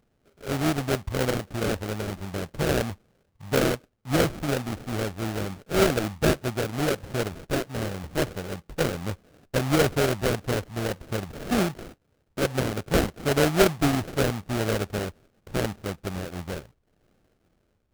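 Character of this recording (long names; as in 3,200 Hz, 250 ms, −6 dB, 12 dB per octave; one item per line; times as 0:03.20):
aliases and images of a low sample rate 1,000 Hz, jitter 20%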